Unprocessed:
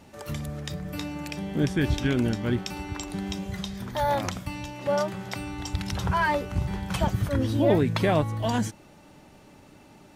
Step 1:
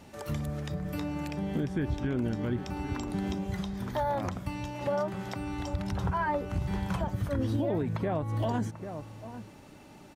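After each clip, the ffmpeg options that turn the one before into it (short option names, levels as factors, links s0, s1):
-filter_complex "[0:a]acrossover=split=1600[s0][s1];[s0]aecho=1:1:791:0.141[s2];[s1]acompressor=threshold=0.00501:ratio=6[s3];[s2][s3]amix=inputs=2:normalize=0,alimiter=limit=0.0891:level=0:latency=1:release=177"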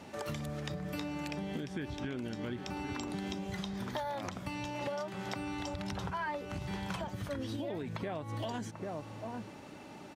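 -filter_complex "[0:a]highpass=f=190:p=1,highshelf=f=8600:g=-10.5,acrossover=split=2300[s0][s1];[s0]acompressor=threshold=0.01:ratio=6[s2];[s2][s1]amix=inputs=2:normalize=0,volume=1.58"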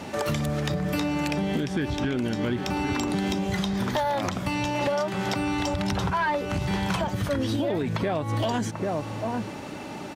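-af "aeval=exprs='0.075*sin(PI/2*1.78*val(0)/0.075)':c=same,volume=1.58"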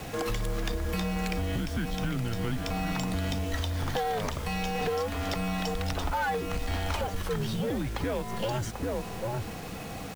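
-af "aeval=exprs='0.119*(cos(1*acos(clip(val(0)/0.119,-1,1)))-cos(1*PI/2))+0.0075*(cos(5*acos(clip(val(0)/0.119,-1,1)))-cos(5*PI/2))':c=same,acrusher=bits=6:mix=0:aa=0.000001,afreqshift=-110,volume=0.631"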